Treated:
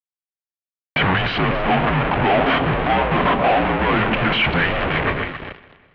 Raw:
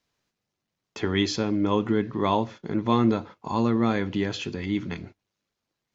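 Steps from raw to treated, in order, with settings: bass shelf 200 Hz -10.5 dB; level rider gain up to 15.5 dB; peak limiter -22.5 dBFS, peak gain reduction 20.5 dB; compression 2:1, threshold -34 dBFS, peak gain reduction 4.5 dB; on a send: echo whose repeats swap between lows and highs 137 ms, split 1.4 kHz, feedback 55%, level -10.5 dB; on the sum: fuzz box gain 50 dB, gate -59 dBFS; mistuned SSB -280 Hz 430–3200 Hz; modulated delay 188 ms, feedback 55%, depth 60 cents, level -22 dB

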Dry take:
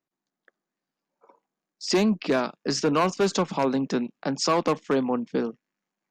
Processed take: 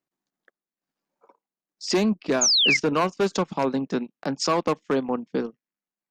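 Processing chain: transient shaper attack 0 dB, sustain -12 dB; painted sound fall, 2.41–2.77 s, 2–7 kHz -19 dBFS

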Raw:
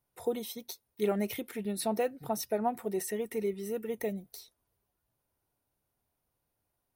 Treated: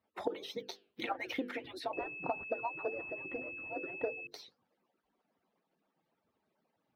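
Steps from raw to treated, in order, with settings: harmonic-percussive separation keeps percussive; high-pass 140 Hz 12 dB/octave; hum notches 50/100/150/200/250/300/350/400/450/500 Hz; compression 6:1, threshold -43 dBFS, peak gain reduction 13.5 dB; flange 1.7 Hz, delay 2.8 ms, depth 5 ms, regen -89%; distance through air 250 m; 1.93–4.27 s: class-D stage that switches slowly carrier 2.6 kHz; trim +16.5 dB

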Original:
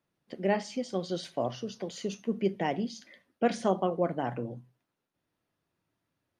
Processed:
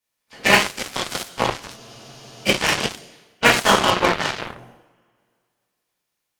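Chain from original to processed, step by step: spectral peaks clipped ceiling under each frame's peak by 29 dB; two-slope reverb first 0.7 s, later 2.4 s, from -25 dB, DRR -8.5 dB; Chebyshev shaper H 3 -16 dB, 7 -19 dB, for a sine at -10 dBFS; spectral freeze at 1.79 s, 0.68 s; trim +6 dB

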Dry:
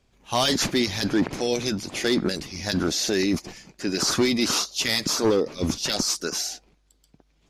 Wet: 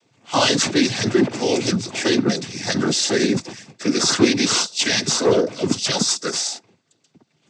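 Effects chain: noise-vocoded speech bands 16; trim +5.5 dB

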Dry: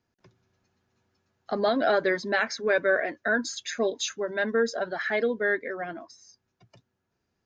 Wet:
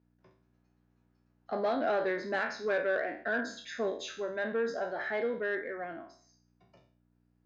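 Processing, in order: spectral sustain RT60 0.47 s; hum 60 Hz, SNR 31 dB; low-pass 1.5 kHz 6 dB/octave; saturation -16.5 dBFS, distortion -21 dB; high-pass 220 Hz 6 dB/octave; trim -4.5 dB

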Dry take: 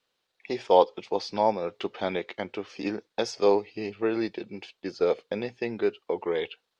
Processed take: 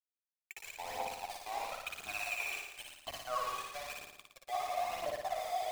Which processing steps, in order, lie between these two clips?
gliding tape speed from 86% -> 152%; spectral gate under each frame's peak -25 dB strong; vowel filter a; on a send at -4 dB: treble shelf 2.3 kHz +4 dB + reverberation RT60 0.85 s, pre-delay 20 ms; on the sum: high-pass sweep 1.9 kHz -> 580 Hz, 3.87–6.12 s; reverse; compression 10:1, threshold -44 dBFS, peak gain reduction 20.5 dB; reverse; steep high-pass 310 Hz 36 dB/octave; small samples zeroed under -49.5 dBFS; phaser 0.99 Hz, delay 2.7 ms, feedback 65%; flutter echo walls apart 9.8 m, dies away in 0.86 s; trim +7 dB

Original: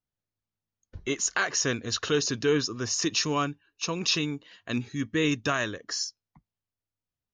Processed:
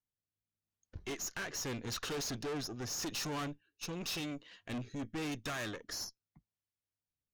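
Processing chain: rotary cabinet horn 0.85 Hz; valve stage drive 36 dB, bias 0.7

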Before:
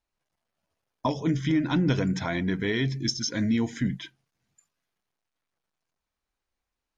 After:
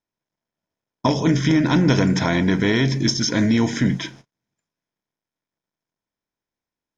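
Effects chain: spectral levelling over time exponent 0.6; gate -47 dBFS, range -35 dB; trim +5 dB

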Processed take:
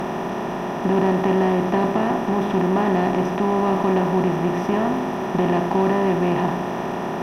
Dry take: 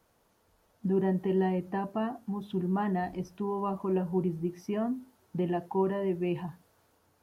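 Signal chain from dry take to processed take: spectral levelling over time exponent 0.2; Chebyshev shaper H 8 -31 dB, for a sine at -11 dBFS; trim +4 dB

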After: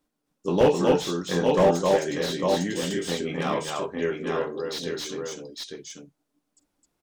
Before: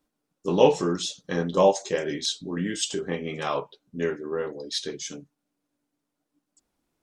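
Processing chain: on a send: multi-tap echo 44/262/852 ms -16.5/-3.5/-5.5 dB; on the sum: slew-rate limiter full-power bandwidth 120 Hz

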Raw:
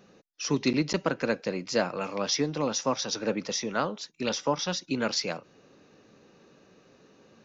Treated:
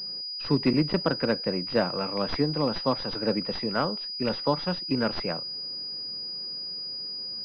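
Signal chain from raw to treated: tracing distortion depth 0.023 ms; bass shelf 140 Hz +8.5 dB; class-D stage that switches slowly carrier 4.9 kHz; trim +1 dB

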